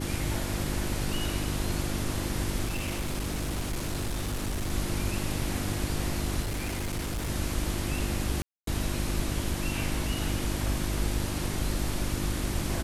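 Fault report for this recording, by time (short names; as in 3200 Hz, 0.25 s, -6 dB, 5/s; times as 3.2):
hum 50 Hz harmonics 7 -34 dBFS
2.65–4.72 clipped -27 dBFS
6.41–7.3 clipped -28 dBFS
8.42–8.67 gap 0.253 s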